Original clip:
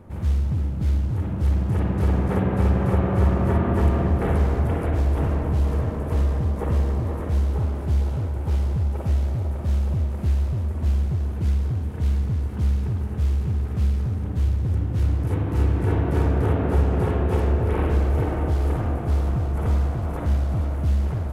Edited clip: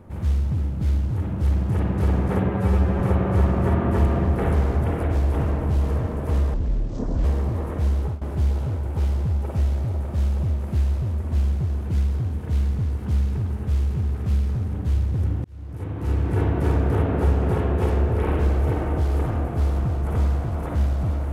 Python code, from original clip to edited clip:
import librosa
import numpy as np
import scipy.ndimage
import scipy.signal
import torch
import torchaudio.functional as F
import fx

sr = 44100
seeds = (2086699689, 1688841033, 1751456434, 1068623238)

y = fx.edit(x, sr, fx.stretch_span(start_s=2.49, length_s=0.34, factor=1.5),
    fx.speed_span(start_s=6.37, length_s=0.38, speed=0.54),
    fx.fade_out_to(start_s=7.47, length_s=0.25, curve='qsin', floor_db=-20.0),
    fx.fade_in_span(start_s=14.95, length_s=0.92), tone=tone)